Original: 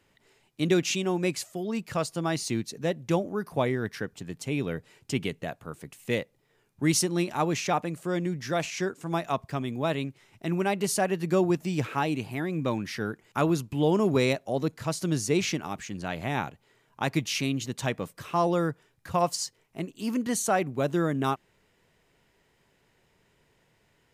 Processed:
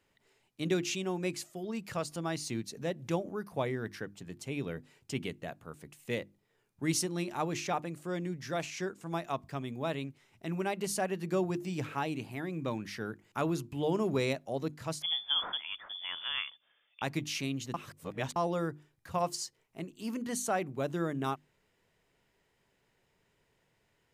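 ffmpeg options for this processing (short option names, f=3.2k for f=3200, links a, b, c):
-filter_complex "[0:a]asettb=1/sr,asplit=3[a][b][c];[a]atrim=end=1.644[d];[b]atrim=start=1.64:end=3.31,asetpts=PTS-STARTPTS,afade=t=in:d=0.004:c=qsin,afade=t=out:st=1.666:d=0.004:c=qsin,acompressor=mode=upward:threshold=-30dB:ratio=2.5:attack=3.2:release=140:knee=2.83:detection=peak[e];[c]atrim=start=3.306[f];[d][e]acrossfade=d=0.004:c1=hsin:c2=qsin[g];[g][f]acrossfade=d=0.004:c1=qsin:c2=hsin,asettb=1/sr,asplit=3[h][i][j];[h]atrim=end=15.024[k];[i]atrim=start=15.02:end=17.02,asetpts=PTS-STARTPTS,afade=t=in:d=0.004:c=qsin,afade=t=out:st=1.996:d=0.004:c=qsin,lowpass=f=3.1k:t=q:w=0.5098,lowpass=f=3.1k:t=q:w=0.6013,lowpass=f=3.1k:t=q:w=0.9,lowpass=f=3.1k:t=q:w=2.563,afreqshift=-3600[l];[j]atrim=start=17.016[m];[k][l]acrossfade=d=0.004:c1=hsin:c2=qsin[n];[n][m]acrossfade=d=0.004:c1=qsin:c2=hsin,asplit=3[o][p][q];[o]atrim=end=17.742[r];[p]atrim=start=17.738:end=18.362,asetpts=PTS-STARTPTS,areverse[s];[q]atrim=start=18.358[t];[r][s]acrossfade=d=0.004:c1=hsin:c2=hsin[u];[u][t]acrossfade=d=0.004:c1=hsin:c2=hsin,bandreject=f=50:t=h:w=6,bandreject=f=100:t=h:w=6,bandreject=f=150:t=h:w=6,bandreject=f=200:t=h:w=6,bandreject=f=250:t=h:w=6,bandreject=f=300:t=h:w=6,bandreject=f=350:t=h:w=6,volume=-6.5dB"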